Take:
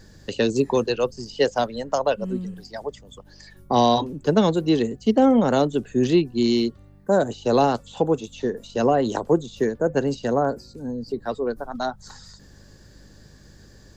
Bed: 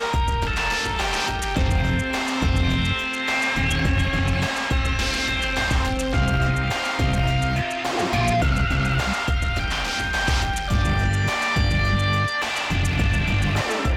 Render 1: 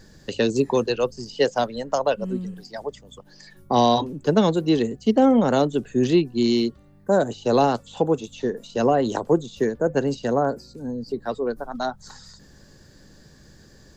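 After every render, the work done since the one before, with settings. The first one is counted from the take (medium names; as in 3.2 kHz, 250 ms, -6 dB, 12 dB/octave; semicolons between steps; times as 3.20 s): de-hum 50 Hz, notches 2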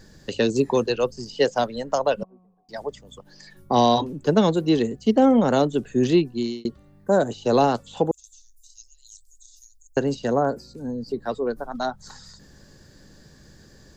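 2.23–2.69 s: cascade formant filter a; 6.24–6.65 s: fade out; 8.11–9.97 s: inverse Chebyshev band-stop 150–1500 Hz, stop band 70 dB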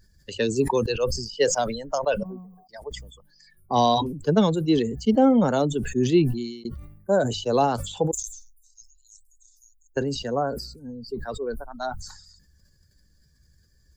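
expander on every frequency bin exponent 1.5; decay stretcher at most 67 dB/s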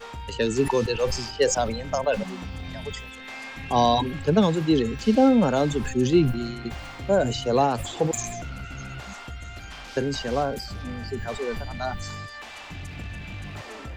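add bed -15.5 dB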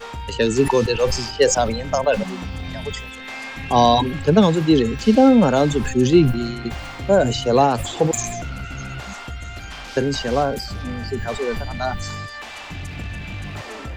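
trim +5.5 dB; peak limiter -3 dBFS, peak gain reduction 1 dB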